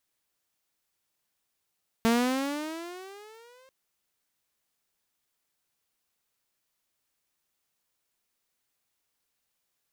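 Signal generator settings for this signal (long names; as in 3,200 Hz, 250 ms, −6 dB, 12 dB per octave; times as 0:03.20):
pitch glide with a swell saw, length 1.64 s, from 225 Hz, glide +15 semitones, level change −36 dB, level −17 dB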